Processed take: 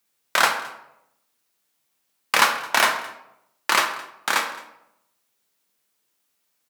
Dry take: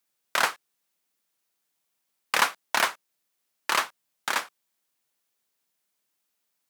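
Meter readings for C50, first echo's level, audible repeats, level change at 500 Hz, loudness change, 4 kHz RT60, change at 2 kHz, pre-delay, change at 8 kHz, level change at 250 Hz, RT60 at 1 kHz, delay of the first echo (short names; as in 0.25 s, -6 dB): 8.0 dB, -21.0 dB, 1, +6.0 dB, +5.5 dB, 0.60 s, +6.0 dB, 8 ms, +5.5 dB, +6.5 dB, 0.80 s, 0.216 s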